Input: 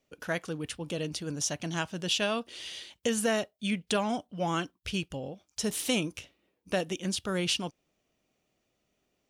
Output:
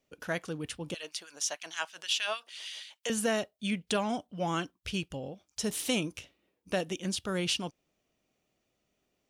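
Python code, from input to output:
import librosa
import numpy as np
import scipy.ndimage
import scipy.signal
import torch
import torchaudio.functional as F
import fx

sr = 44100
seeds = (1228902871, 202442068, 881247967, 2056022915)

y = fx.filter_lfo_highpass(x, sr, shape='sine', hz=6.4, low_hz=660.0, high_hz=2200.0, q=1.1, at=(0.94, 3.1))
y = y * librosa.db_to_amplitude(-1.5)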